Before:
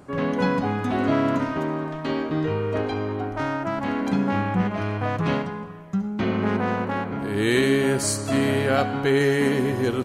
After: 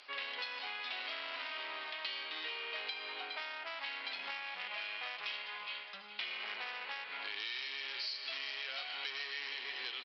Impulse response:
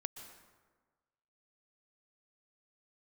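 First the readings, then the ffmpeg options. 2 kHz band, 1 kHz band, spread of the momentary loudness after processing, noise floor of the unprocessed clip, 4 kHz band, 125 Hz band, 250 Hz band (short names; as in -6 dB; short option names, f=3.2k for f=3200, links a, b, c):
-9.5 dB, -18.5 dB, 3 LU, -32 dBFS, -2.5 dB, under -40 dB, under -40 dB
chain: -af "highshelf=f=1.9k:t=q:w=1.5:g=7.5,aecho=1:1:412|824|1236:0.2|0.0559|0.0156,aresample=11025,asoftclip=type=tanh:threshold=-20dB,aresample=44100,highpass=630,lowpass=4.2k,aderivative,acompressor=threshold=-47dB:ratio=10,volume=9.5dB"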